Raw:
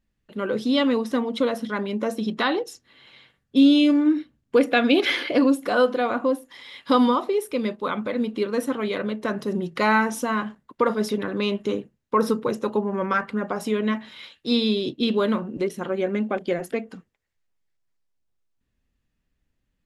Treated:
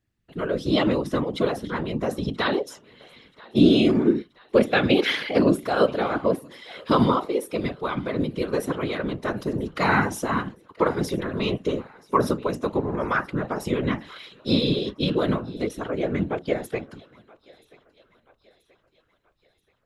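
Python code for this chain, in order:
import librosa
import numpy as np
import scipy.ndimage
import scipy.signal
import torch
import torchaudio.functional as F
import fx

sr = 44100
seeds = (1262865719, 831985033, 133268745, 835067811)

y = fx.echo_thinned(x, sr, ms=980, feedback_pct=53, hz=420.0, wet_db=-23.0)
y = fx.whisperise(y, sr, seeds[0])
y = F.gain(torch.from_numpy(y), -1.0).numpy()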